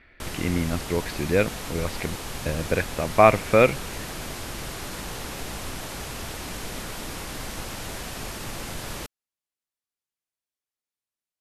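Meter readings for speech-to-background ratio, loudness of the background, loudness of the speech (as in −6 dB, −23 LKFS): 10.5 dB, −34.0 LKFS, −23.5 LKFS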